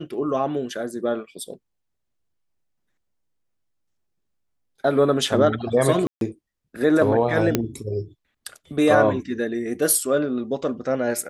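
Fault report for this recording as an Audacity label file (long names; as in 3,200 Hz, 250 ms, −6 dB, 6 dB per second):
6.070000	6.210000	drop-out 142 ms
7.550000	7.550000	click −5 dBFS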